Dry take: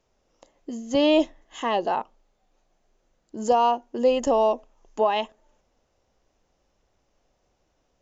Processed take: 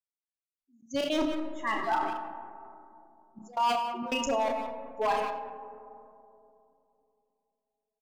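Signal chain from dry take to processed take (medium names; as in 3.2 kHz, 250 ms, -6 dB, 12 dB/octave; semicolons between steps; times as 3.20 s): expander on every frequency bin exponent 3; low-pass 4.5 kHz 12 dB/octave; treble shelf 3.1 kHz +11 dB; hum notches 50/100/150/200/250/300/350/400/450/500 Hz; reverse; compression 12:1, threshold -31 dBFS, peak gain reduction 14.5 dB; reverse; wavefolder -29 dBFS; trance gate "xxxx.xx..xx.xx." 164 bpm -24 dB; doubling 33 ms -8 dB; speakerphone echo 180 ms, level -9 dB; reverberation RT60 2.9 s, pre-delay 20 ms, DRR 8 dB; decay stretcher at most 42 dB/s; trim +7 dB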